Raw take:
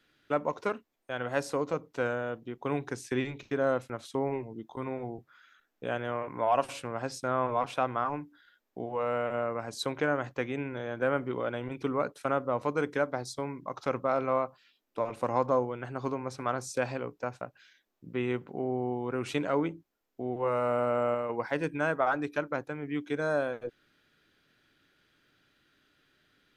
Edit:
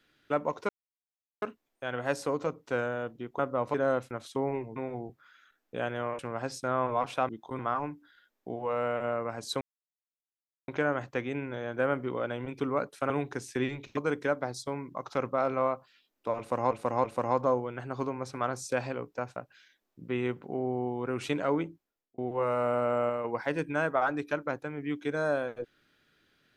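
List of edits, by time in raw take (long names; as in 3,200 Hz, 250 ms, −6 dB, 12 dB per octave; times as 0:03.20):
0:00.69: splice in silence 0.73 s
0:02.66–0:03.53: swap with 0:12.33–0:12.68
0:04.55–0:04.85: move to 0:07.89
0:06.28–0:06.79: remove
0:09.91: splice in silence 1.07 s
0:15.09–0:15.42: repeat, 3 plays
0:19.71–0:20.23: fade out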